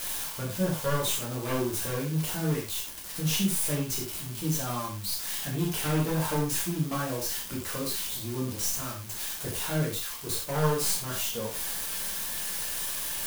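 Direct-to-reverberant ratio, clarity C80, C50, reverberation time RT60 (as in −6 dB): −4.0 dB, 9.5 dB, 5.5 dB, non-exponential decay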